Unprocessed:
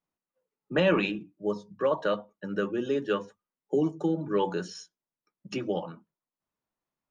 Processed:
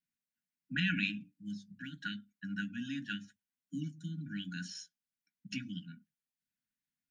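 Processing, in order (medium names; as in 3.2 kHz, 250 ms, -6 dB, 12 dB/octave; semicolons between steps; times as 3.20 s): brick-wall FIR band-stop 290–1400 Hz; bass shelf 87 Hz -9.5 dB; trim -2.5 dB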